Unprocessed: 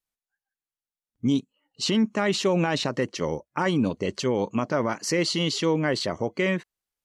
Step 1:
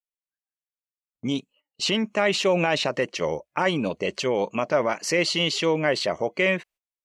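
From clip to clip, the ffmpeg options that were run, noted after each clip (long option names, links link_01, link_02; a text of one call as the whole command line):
ffmpeg -i in.wav -af "agate=range=-19dB:threshold=-51dB:ratio=16:detection=peak,equalizer=frequency=100:width_type=o:width=0.67:gain=-10,equalizer=frequency=250:width_type=o:width=0.67:gain=-5,equalizer=frequency=630:width_type=o:width=0.67:gain=6,equalizer=frequency=2500:width_type=o:width=0.67:gain=8" out.wav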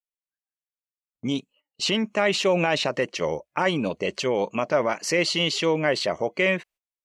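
ffmpeg -i in.wav -af anull out.wav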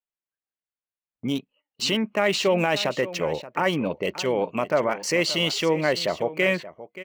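ffmpeg -i in.wav -filter_complex "[0:a]acrossover=split=3500[link_01][link_02];[link_02]aeval=exprs='val(0)*gte(abs(val(0)),0.0112)':channel_layout=same[link_03];[link_01][link_03]amix=inputs=2:normalize=0,aecho=1:1:578:0.178" out.wav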